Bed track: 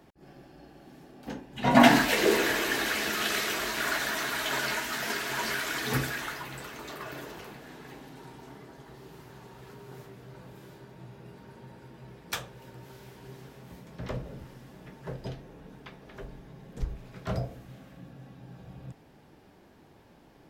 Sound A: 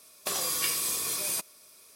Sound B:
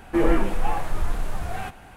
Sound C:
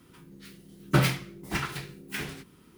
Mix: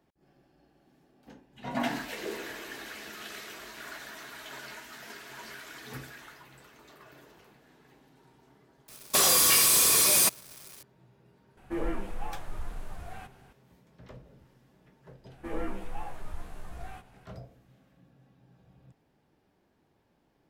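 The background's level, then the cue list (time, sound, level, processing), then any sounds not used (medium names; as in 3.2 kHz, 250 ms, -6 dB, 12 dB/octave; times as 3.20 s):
bed track -13.5 dB
8.88 s: add A -4 dB + waveshaping leveller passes 5
11.57 s: add B -12.5 dB
15.30 s: add B -16 dB + doubling 16 ms -2 dB
not used: C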